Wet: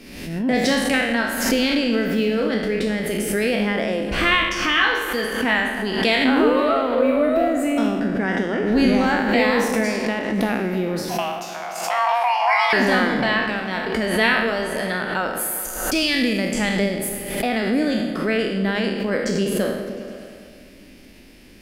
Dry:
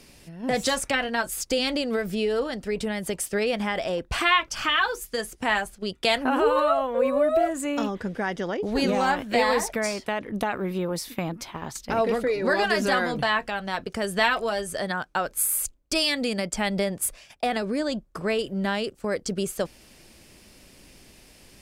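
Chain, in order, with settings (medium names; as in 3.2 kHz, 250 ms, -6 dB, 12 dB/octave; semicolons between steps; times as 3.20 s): spectral sustain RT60 0.94 s; ten-band graphic EQ 125 Hz -6 dB, 250 Hz +9 dB, 1 kHz -4 dB, 2 kHz +4 dB, 8 kHz -8 dB; 11.09–12.73 s: frequency shift +470 Hz; delay with an opening low-pass 102 ms, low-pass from 200 Hz, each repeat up 1 oct, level -6 dB; swell ahead of each attack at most 53 dB/s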